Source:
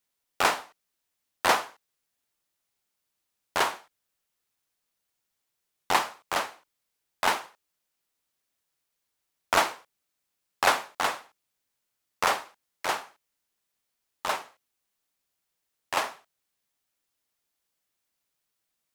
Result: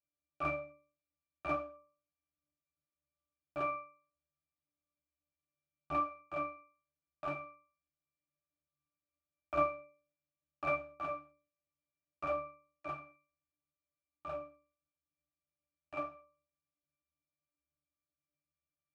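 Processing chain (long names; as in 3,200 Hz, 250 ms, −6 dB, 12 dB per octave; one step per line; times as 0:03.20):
resonances in every octave D, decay 0.43 s
level +9 dB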